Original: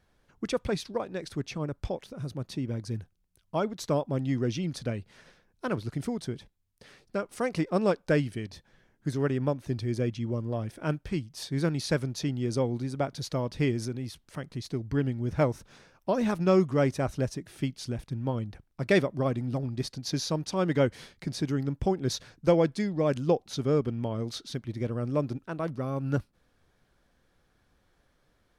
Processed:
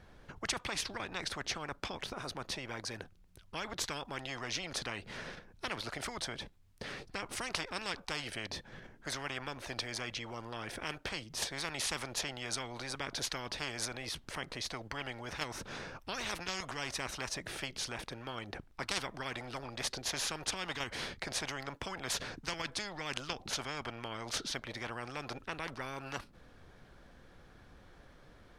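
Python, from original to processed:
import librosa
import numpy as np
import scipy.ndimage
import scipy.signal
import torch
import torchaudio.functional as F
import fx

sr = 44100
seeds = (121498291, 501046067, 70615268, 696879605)

p1 = fx.lowpass(x, sr, hz=3700.0, slope=6)
p2 = fx.level_steps(p1, sr, step_db=21)
p3 = p1 + F.gain(torch.from_numpy(p2), -1.0).numpy()
p4 = fx.spectral_comp(p3, sr, ratio=10.0)
y = F.gain(torch.from_numpy(p4), -7.5).numpy()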